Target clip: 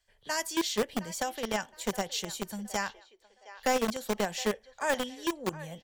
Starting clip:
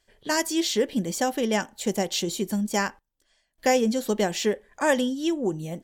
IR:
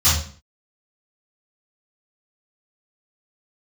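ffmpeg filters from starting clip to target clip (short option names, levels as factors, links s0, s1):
-filter_complex "[0:a]acrossover=split=190|470|5100[s0][s1][s2][s3];[s1]acrusher=bits=3:mix=0:aa=0.000001[s4];[s2]aecho=1:1:716|1432|2148:0.168|0.0571|0.0194[s5];[s0][s4][s5][s3]amix=inputs=4:normalize=0,volume=0.501"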